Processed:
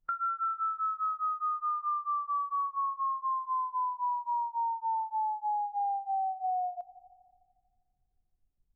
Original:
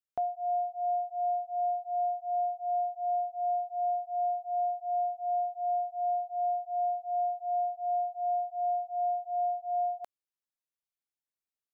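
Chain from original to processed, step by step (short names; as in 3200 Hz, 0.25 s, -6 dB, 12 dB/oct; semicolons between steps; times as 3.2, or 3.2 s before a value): speed glide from 195% -> 73%; added noise brown -71 dBFS; on a send at -22 dB: reverb RT60 2.6 s, pre-delay 3 ms; on the sum: compressor 12:1, threshold -41 dBFS, peak gain reduction 14 dB; spectral expander 1.5:1; gain +2.5 dB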